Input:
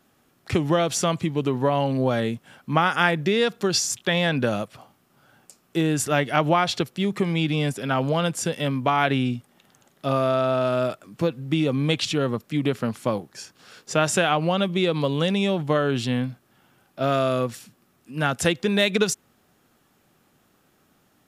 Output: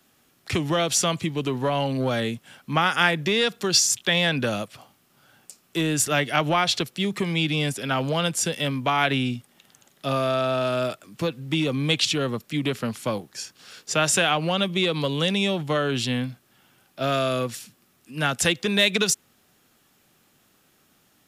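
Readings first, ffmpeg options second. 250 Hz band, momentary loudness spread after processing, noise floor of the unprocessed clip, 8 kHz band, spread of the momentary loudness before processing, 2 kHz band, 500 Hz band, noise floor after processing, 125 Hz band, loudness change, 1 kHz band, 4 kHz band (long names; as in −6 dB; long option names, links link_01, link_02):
−2.5 dB, 10 LU, −64 dBFS, +4.5 dB, 7 LU, +1.5 dB, −2.5 dB, −63 dBFS, −2.0 dB, 0.0 dB, −1.5 dB, +4.5 dB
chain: -filter_complex "[0:a]acrossover=split=220|720|2000[link_01][link_02][link_03][link_04];[link_02]asoftclip=type=hard:threshold=-21dB[link_05];[link_04]acontrast=77[link_06];[link_01][link_05][link_03][link_06]amix=inputs=4:normalize=0,volume=-2dB"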